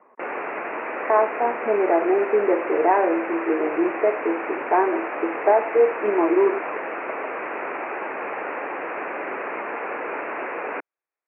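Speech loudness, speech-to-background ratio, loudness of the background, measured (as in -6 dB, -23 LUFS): -22.0 LUFS, 7.5 dB, -29.5 LUFS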